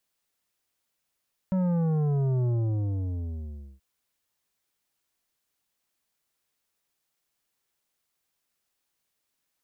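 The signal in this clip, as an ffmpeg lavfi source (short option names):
-f lavfi -i "aevalsrc='0.0668*clip((2.28-t)/1.34,0,1)*tanh(3.16*sin(2*PI*190*2.28/log(65/190)*(exp(log(65/190)*t/2.28)-1)))/tanh(3.16)':d=2.28:s=44100"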